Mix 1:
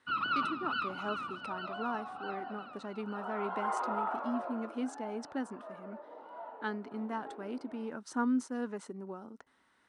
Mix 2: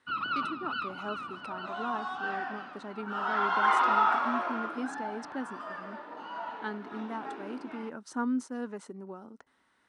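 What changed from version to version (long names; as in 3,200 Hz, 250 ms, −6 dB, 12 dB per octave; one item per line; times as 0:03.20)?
second sound: remove resonant band-pass 550 Hz, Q 2.3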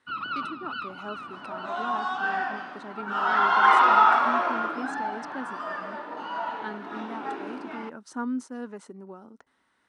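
second sound +7.0 dB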